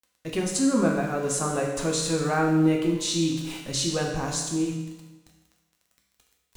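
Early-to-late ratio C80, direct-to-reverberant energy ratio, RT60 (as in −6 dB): 5.5 dB, −1.0 dB, 1.1 s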